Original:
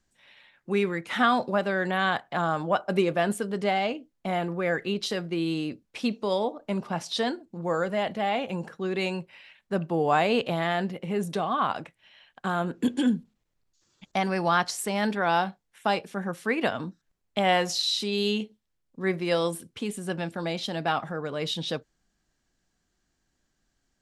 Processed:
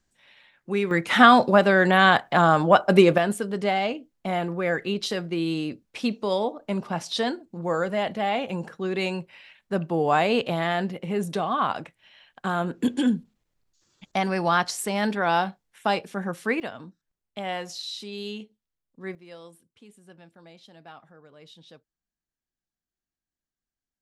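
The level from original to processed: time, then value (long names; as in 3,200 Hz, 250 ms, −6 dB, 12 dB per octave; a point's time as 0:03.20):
0 dB
from 0:00.91 +8.5 dB
from 0:03.18 +1.5 dB
from 0:16.60 −8.5 dB
from 0:19.15 −19.5 dB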